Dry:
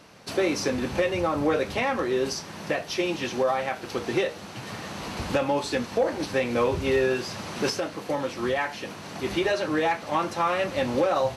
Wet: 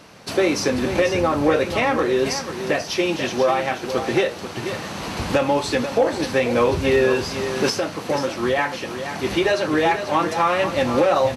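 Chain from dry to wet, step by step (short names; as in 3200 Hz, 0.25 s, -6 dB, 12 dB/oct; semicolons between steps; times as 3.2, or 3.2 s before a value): echo 0.488 s -9.5 dB; gain +5.5 dB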